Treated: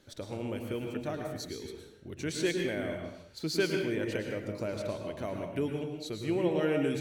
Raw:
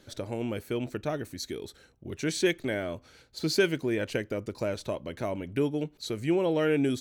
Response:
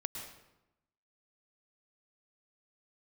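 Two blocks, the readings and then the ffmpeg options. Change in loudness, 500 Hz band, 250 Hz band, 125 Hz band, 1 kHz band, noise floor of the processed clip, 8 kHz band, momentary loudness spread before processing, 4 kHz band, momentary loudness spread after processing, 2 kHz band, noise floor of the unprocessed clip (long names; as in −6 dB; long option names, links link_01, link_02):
−3.5 dB, −3.0 dB, −3.0 dB, −2.5 dB, −3.0 dB, −53 dBFS, −4.0 dB, 12 LU, −3.5 dB, 11 LU, −3.5 dB, −61 dBFS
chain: -filter_complex "[1:a]atrim=start_sample=2205,afade=type=out:start_time=0.44:duration=0.01,atrim=end_sample=19845[link_01];[0:a][link_01]afir=irnorm=-1:irlink=0,volume=-3.5dB"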